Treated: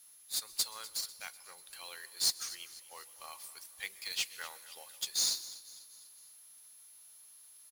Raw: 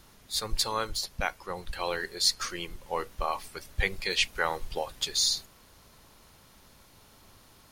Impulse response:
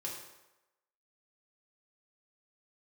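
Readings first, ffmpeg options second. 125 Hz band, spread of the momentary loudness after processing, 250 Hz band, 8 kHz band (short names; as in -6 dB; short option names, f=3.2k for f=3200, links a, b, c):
under -25 dB, 23 LU, -22.0 dB, -2.0 dB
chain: -filter_complex "[0:a]aderivative,acrusher=bits=2:mode=log:mix=0:aa=0.000001,aeval=exprs='val(0)+0.00178*sin(2*PI*11000*n/s)':c=same,aecho=1:1:247|494|741|988:0.133|0.0667|0.0333|0.0167,asplit=2[a][b];[1:a]atrim=start_sample=2205,adelay=126[c];[b][c]afir=irnorm=-1:irlink=0,volume=-19.5dB[d];[a][d]amix=inputs=2:normalize=0,volume=-2.5dB"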